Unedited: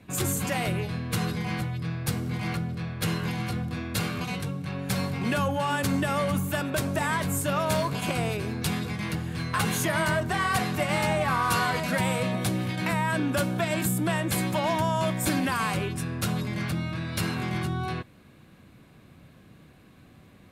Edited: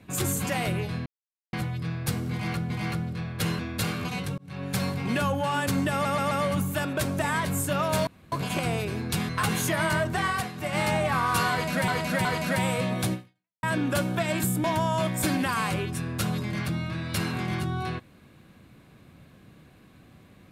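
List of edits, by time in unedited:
0:01.06–0:01.53: silence
0:02.32–0:02.70: repeat, 2 plays
0:03.21–0:03.75: remove
0:04.54–0:04.81: fade in
0:06.08: stutter 0.13 s, 4 plays
0:07.84: splice in room tone 0.25 s
0:08.81–0:09.45: remove
0:10.42–0:10.96: duck −10.5 dB, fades 0.26 s
0:11.67–0:12.04: repeat, 3 plays
0:12.55–0:13.05: fade out exponential
0:14.06–0:14.67: remove

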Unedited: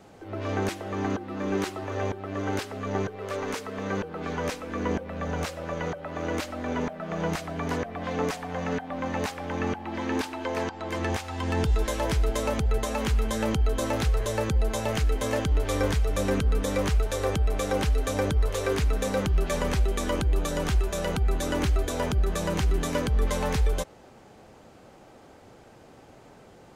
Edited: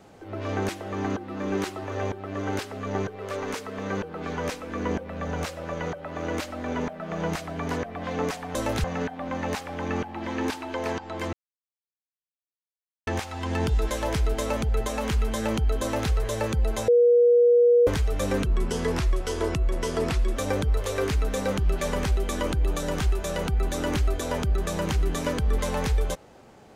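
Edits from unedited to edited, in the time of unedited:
0:11.04: splice in silence 1.74 s
0:13.79–0:14.08: duplicate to 0:08.55
0:14.85–0:15.84: beep over 480 Hz −14 dBFS
0:16.43–0:18.05: play speed 85%

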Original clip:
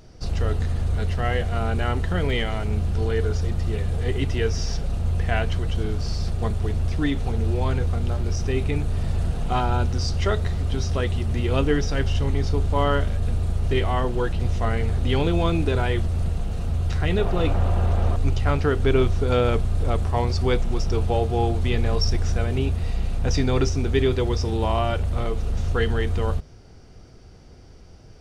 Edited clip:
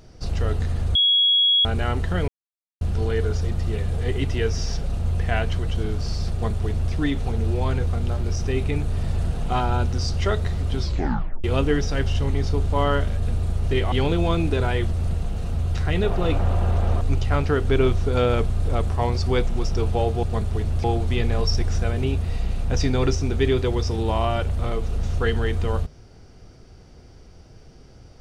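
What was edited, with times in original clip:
0:00.95–0:01.65: beep over 3,330 Hz −14.5 dBFS
0:02.28–0:02.81: silence
0:06.32–0:06.93: duplicate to 0:21.38
0:10.78: tape stop 0.66 s
0:13.92–0:15.07: remove

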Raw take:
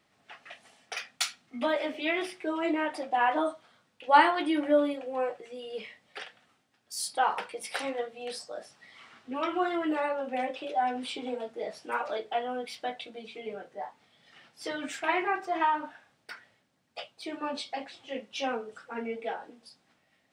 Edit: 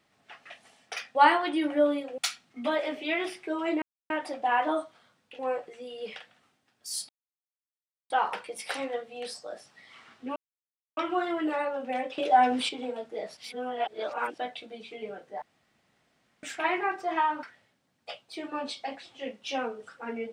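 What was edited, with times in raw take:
0:02.79: splice in silence 0.28 s
0:04.08–0:05.11: move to 0:01.15
0:05.88–0:06.22: remove
0:07.15: splice in silence 1.01 s
0:09.41: splice in silence 0.61 s
0:10.62–0:11.13: clip gain +7.5 dB
0:11.81–0:12.82: reverse
0:13.86–0:14.87: fill with room tone
0:15.87–0:16.32: remove

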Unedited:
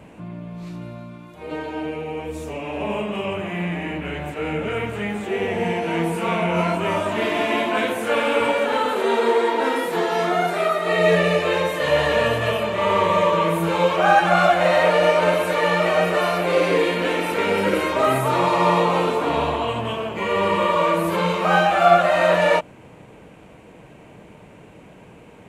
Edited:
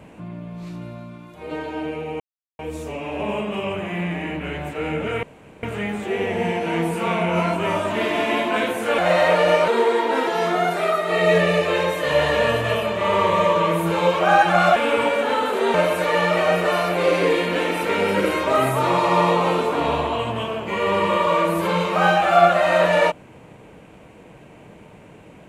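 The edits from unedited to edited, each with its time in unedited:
0:02.20: splice in silence 0.39 s
0:04.84: splice in room tone 0.40 s
0:08.19–0:09.17: swap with 0:14.53–0:15.23
0:09.76–0:10.04: remove

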